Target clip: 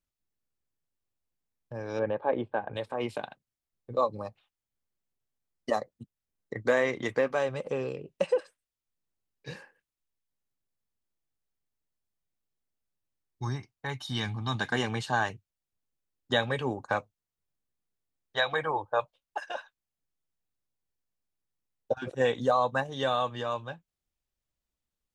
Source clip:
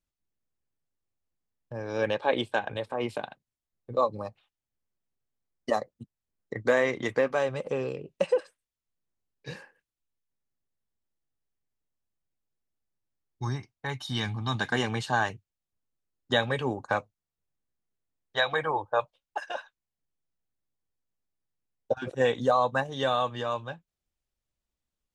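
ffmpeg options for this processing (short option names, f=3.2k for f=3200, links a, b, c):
-filter_complex "[0:a]asettb=1/sr,asplit=3[a][b][c];[a]atrim=end=1.994[d];[b]atrim=start=1.99:end=2.74,asetpts=PTS-STARTPTS,afade=t=in:d=0.004:c=qsin,afade=t=out:st=0.746:d=0.004:c=qsin,lowpass=1.2k[e];[c]atrim=start=2.736[f];[d][e]acrossfade=d=0.004:c1=hsin:c2=qsin[g];[g][f]acrossfade=d=0.004:c1=qsin:c2=hsin,volume=-1.5dB"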